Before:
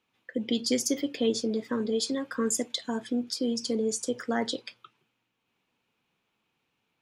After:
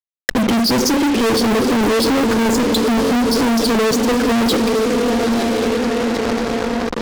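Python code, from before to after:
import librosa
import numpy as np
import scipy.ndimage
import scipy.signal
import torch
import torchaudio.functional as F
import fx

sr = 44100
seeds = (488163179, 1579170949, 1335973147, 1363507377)

p1 = fx.bin_expand(x, sr, power=1.5)
p2 = fx.lowpass_res(p1, sr, hz=4800.0, q=2.7)
p3 = fx.high_shelf(p2, sr, hz=2700.0, db=-8.5)
p4 = p3 + fx.echo_diffused(p3, sr, ms=953, feedback_pct=44, wet_db=-13, dry=0)
p5 = fx.rev_schroeder(p4, sr, rt60_s=0.32, comb_ms=31, drr_db=17.5)
p6 = fx.level_steps(p5, sr, step_db=20)
p7 = p5 + (p6 * librosa.db_to_amplitude(3.0))
p8 = fx.curve_eq(p7, sr, hz=(120.0, 360.0, 1700.0), db=(0, 9, -9))
p9 = fx.fuzz(p8, sr, gain_db=51.0, gate_db=-47.0)
p10 = fx.pre_swell(p9, sr, db_per_s=23.0)
y = p10 * librosa.db_to_amplitude(-1.0)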